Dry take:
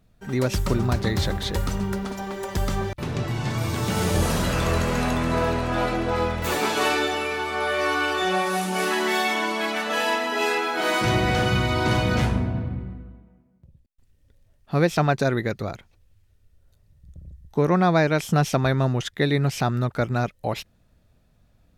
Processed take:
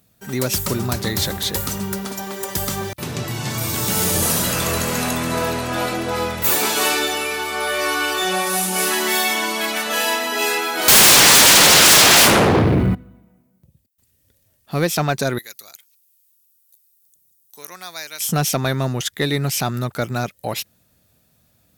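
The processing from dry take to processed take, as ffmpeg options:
-filter_complex "[0:a]asettb=1/sr,asplit=3[a][b][c];[a]atrim=end=10.884[d];[b]atrim=start=10.88:end=12.95,asetpts=PTS-STARTPTS,afade=t=in:d=0.004:c=qsin,afade=t=out:st=2.066:d=0.004:c=qsin,aeval=exprs='0.335*sin(PI/2*7.94*val(0)/0.335)':c=same[e];[c]atrim=start=12.946[f];[d][e]acrossfade=d=0.004:c1=hsin:c2=qsin[g];[g][f]acrossfade=d=0.004:c1=qsin:c2=hsin,asettb=1/sr,asplit=3[h][i][j];[h]atrim=end=15.384[k];[i]atrim=start=15.38:end=18.21,asetpts=PTS-STARTPTS,afade=t=in:d=0.004:c=qsin,afade=t=out:st=2.826:d=0.004:c=qsin,aderivative[l];[j]atrim=start=18.206[m];[k][l]acrossfade=d=0.004:c1=hsin:c2=qsin[n];[n][m]acrossfade=d=0.004:c1=qsin:c2=hsin,highpass=97,aemphasis=mode=production:type=75fm,acontrast=78,volume=-5dB"

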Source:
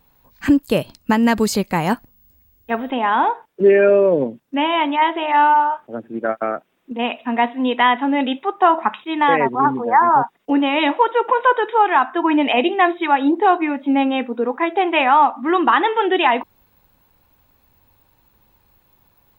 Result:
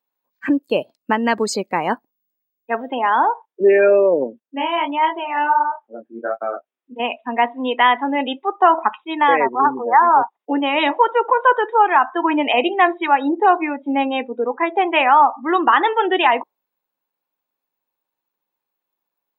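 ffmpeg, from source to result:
-filter_complex "[0:a]asettb=1/sr,asplit=3[a][b][c];[a]atrim=end=4.404[d];[b]atrim=start=4.4:end=7,asetpts=PTS-STARTPTS,afade=t=in:d=0.004:c=qsin,afade=t=out:st=2.596:d=0.004:c=qsin,flanger=delay=19:depth=4.5:speed=1.5[e];[c]atrim=start=6.996[f];[d][e]acrossfade=d=0.004:c1=hsin:c2=qsin[g];[g][f]acrossfade=d=0.004:c1=qsin:c2=hsin,afftdn=nr=22:nf=-28,highpass=340,volume=1dB"

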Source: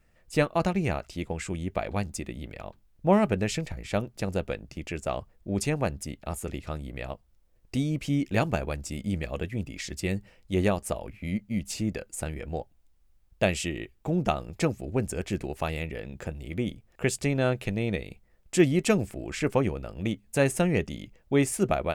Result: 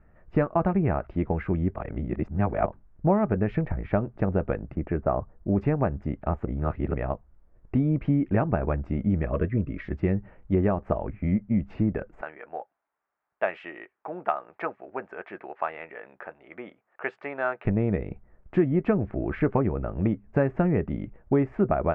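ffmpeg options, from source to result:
-filter_complex "[0:a]asettb=1/sr,asplit=3[a][b][c];[a]atrim=end=4.754[d];[b]atrim=start=4.75:end=5.56,asetpts=PTS-STARTPTS,afade=t=in:d=0.004:c=qsin,afade=t=out:st=0.806:d=0.004:c=qsin,lowpass=1.7k[e];[c]atrim=start=5.556[f];[d][e]acrossfade=d=0.004:c1=hsin:c2=qsin[g];[g][f]acrossfade=d=0.004:c1=qsin:c2=hsin,asettb=1/sr,asplit=3[h][i][j];[h]atrim=end=9.324[k];[i]atrim=start=9.32:end=9.85,asetpts=PTS-STARTPTS,afade=t=in:d=0.004:c=qsin,afade=t=out:st=0.526:d=0.004:c=qsin,asuperstop=centerf=790:order=20:qfactor=2.7[l];[j]atrim=start=9.846[m];[k][l]acrossfade=d=0.004:c1=hsin:c2=qsin[n];[n][m]acrossfade=d=0.004:c1=qsin:c2=hsin,asettb=1/sr,asplit=3[o][p][q];[o]atrim=end=12.214[r];[p]atrim=start=12.21:end=17.65,asetpts=PTS-STARTPTS,afade=t=in:d=0.004:c=qsin,afade=t=out:st=5.436:d=0.004:c=qsin,highpass=890[s];[q]atrim=start=17.646[t];[r][s]acrossfade=d=0.004:c1=hsin:c2=qsin[u];[u][t]acrossfade=d=0.004:c1=qsin:c2=hsin,asplit=5[v][w][x][y][z];[v]atrim=end=1.762[aa];[w]atrim=start=1.758:end=2.662,asetpts=PTS-STARTPTS,areverse[ab];[x]atrim=start=2.658:end=6.452[ac];[y]atrim=start=6.448:end=6.942,asetpts=PTS-STARTPTS,areverse[ad];[z]atrim=start=6.938[ae];[aa][ab]acrossfade=d=0.004:c1=hsin:c2=hsin[af];[af][ac]acrossfade=d=0.004:c1=hsin:c2=hsin[ag];[ag][ad]acrossfade=d=0.004:c1=hsin:c2=hsin[ah];[ah][ae]acrossfade=d=0.004:c1=hsin:c2=hsin,lowpass=f=1.6k:w=0.5412,lowpass=f=1.6k:w=1.3066,bandreject=f=510:w=12,acompressor=threshold=-27dB:ratio=5,volume=8dB"

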